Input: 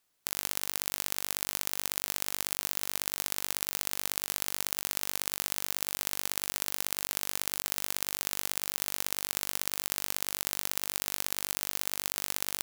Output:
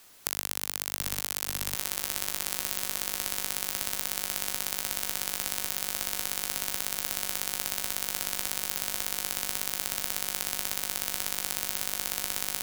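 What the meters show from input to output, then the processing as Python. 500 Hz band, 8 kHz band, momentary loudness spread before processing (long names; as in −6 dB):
+1.5 dB, +2.0 dB, 0 LU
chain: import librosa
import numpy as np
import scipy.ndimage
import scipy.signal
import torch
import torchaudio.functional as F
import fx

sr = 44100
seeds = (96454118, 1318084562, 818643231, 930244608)

p1 = x + fx.echo_feedback(x, sr, ms=748, feedback_pct=57, wet_db=-4.5, dry=0)
y = fx.band_squash(p1, sr, depth_pct=70)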